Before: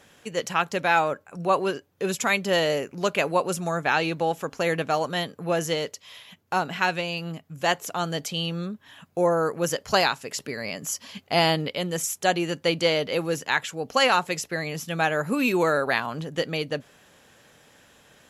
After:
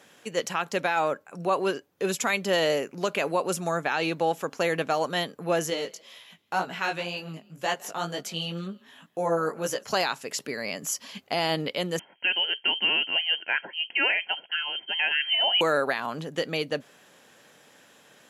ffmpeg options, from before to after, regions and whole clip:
ffmpeg -i in.wav -filter_complex "[0:a]asettb=1/sr,asplit=3[link_01][link_02][link_03];[link_01]atrim=end=5.704[link_04];[link_02]atrim=start=5.7:end=9.86,asetpts=PTS-STARTPTS,afade=type=in:duration=0.004:curve=qsin,afade=type=out:start_time=4.156:duration=0.004:curve=qsin,asplit=3[link_05][link_06][link_07];[link_06]adelay=159,afreqshift=37,volume=-24dB[link_08];[link_07]adelay=318,afreqshift=74,volume=-32.6dB[link_09];[link_05][link_08][link_09]amix=inputs=3:normalize=0,atrim=end_sample=183456,flanger=delay=15.5:depth=3.9:speed=2[link_10];[link_03]atrim=start=9.856[link_11];[link_04][link_10]acrossfade=duration=0.004:curve1=hsin:curve2=qsin[link_12];[link_12][link_11]acrossfade=duration=0.004:curve1=qsin:curve2=hsin,asettb=1/sr,asplit=3[link_13][link_14][link_15];[link_13]atrim=end=11.994[link_16];[link_14]atrim=start=11.99:end=15.61,asetpts=PTS-STARTPTS,afade=type=in:duration=0.004:curve=qsin,afade=type=out:start_time=3.616:duration=0.004:curve=qsin,asuperstop=centerf=2100:order=4:qfactor=5.8,lowpass=frequency=2800:width_type=q:width=0.5098,lowpass=frequency=2800:width_type=q:width=0.6013,lowpass=frequency=2800:width_type=q:width=0.9,lowpass=frequency=2800:width_type=q:width=2.563,afreqshift=-3300[link_17];[link_15]atrim=start=15.606[link_18];[link_16][link_17]acrossfade=duration=0.004:curve1=hsin:curve2=qsin[link_19];[link_19][link_18]acrossfade=duration=0.004:curve1=qsin:curve2=hsin,alimiter=limit=-14.5dB:level=0:latency=1:release=65,highpass=180" out.wav

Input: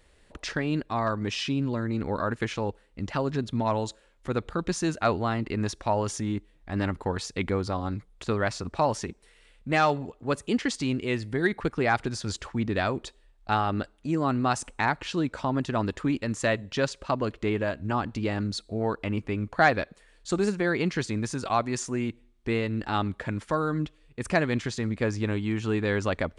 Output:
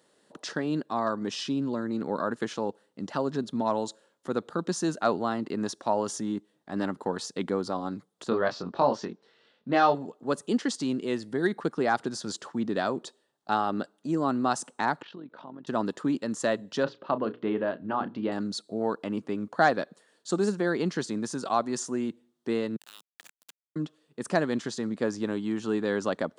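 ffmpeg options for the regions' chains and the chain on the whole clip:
ffmpeg -i in.wav -filter_complex "[0:a]asettb=1/sr,asplit=3[link_01][link_02][link_03];[link_01]atrim=end=8.294[link_04];[link_02]atrim=start=8.29:end=9.95,asetpts=PTS-STARTPTS,afade=type=in:duration=0.004:curve=qsin,afade=type=out:start_time=1.656:duration=0.004:curve=qsin,lowpass=frequency=4800:width=0.5412,lowpass=frequency=4800:width=1.3066,asplit=2[link_05][link_06];[link_06]adelay=22,volume=-4dB[link_07];[link_05][link_07]amix=inputs=2:normalize=0,atrim=end_sample=73206[link_08];[link_03]atrim=start=9.946[link_09];[link_04][link_08]acrossfade=duration=0.004:curve1=hsin:curve2=qsin[link_10];[link_10][link_09]acrossfade=duration=0.004:curve1=qsin:curve2=hsin,asettb=1/sr,asplit=3[link_11][link_12][link_13];[link_11]atrim=end=15.024[link_14];[link_12]atrim=start=15.02:end=15.67,asetpts=PTS-STARTPTS,afade=type=in:duration=0.004:curve=qsin,afade=type=out:start_time=0.646:duration=0.004:curve=qsin,lowpass=frequency=3500:width=0.5412,lowpass=frequency=3500:width=1.3066,acompressor=threshold=-37dB:ratio=5:attack=3.2:release=140:knee=1:detection=peak,tremolo=f=46:d=0.667[link_15];[link_13]atrim=start=15.666[link_16];[link_14][link_15]acrossfade=duration=0.004:curve1=hsin:curve2=qsin[link_17];[link_17][link_16]acrossfade=duration=0.004:curve1=qsin:curve2=hsin,asettb=1/sr,asplit=3[link_18][link_19][link_20];[link_18]atrim=end=16.834[link_21];[link_19]atrim=start=16.83:end=18.32,asetpts=PTS-STARTPTS,afade=type=in:duration=0.004:curve=qsin,afade=type=out:start_time=1.486:duration=0.004:curve=qsin,lowpass=frequency=3400:width=0.5412,lowpass=frequency=3400:width=1.3066,bandreject=frequency=60:width_type=h:width=6,bandreject=frequency=120:width_type=h:width=6,bandreject=frequency=180:width_type=h:width=6,bandreject=frequency=240:width_type=h:width=6,bandreject=frequency=300:width_type=h:width=6,bandreject=frequency=360:width_type=h:width=6,bandreject=frequency=420:width_type=h:width=6,bandreject=frequency=480:width_type=h:width=6,asplit=2[link_22][link_23];[link_23]adelay=32,volume=-13dB[link_24];[link_22][link_24]amix=inputs=2:normalize=0,atrim=end_sample=65709[link_25];[link_20]atrim=start=18.316[link_26];[link_21][link_25]acrossfade=duration=0.004:curve1=hsin:curve2=qsin[link_27];[link_27][link_26]acrossfade=duration=0.004:curve1=qsin:curve2=hsin,asettb=1/sr,asplit=3[link_28][link_29][link_30];[link_28]atrim=end=22.764[link_31];[link_29]atrim=start=22.76:end=23.76,asetpts=PTS-STARTPTS,afade=type=in:duration=0.004:curve=qsin,afade=type=out:start_time=0.996:duration=0.004:curve=qsin,acompressor=threshold=-37dB:ratio=5:attack=3.2:release=140:knee=1:detection=peak,highpass=frequency=2600:width_type=q:width=3.8,aeval=exprs='val(0)*gte(abs(val(0)),0.0112)':channel_layout=same[link_32];[link_30]atrim=start=23.756[link_33];[link_31][link_32]acrossfade=duration=0.004:curve1=hsin:curve2=qsin[link_34];[link_34][link_33]acrossfade=duration=0.004:curve1=qsin:curve2=hsin,highpass=frequency=170:width=0.5412,highpass=frequency=170:width=1.3066,equalizer=frequency=2300:width_type=o:width=0.6:gain=-12" out.wav

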